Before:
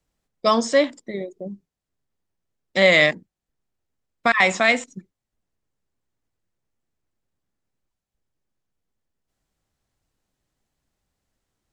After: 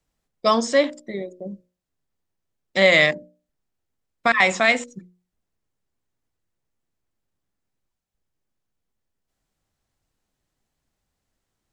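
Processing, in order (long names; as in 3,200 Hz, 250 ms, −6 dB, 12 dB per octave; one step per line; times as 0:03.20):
mains-hum notches 60/120/180/240/300/360/420/480/540/600 Hz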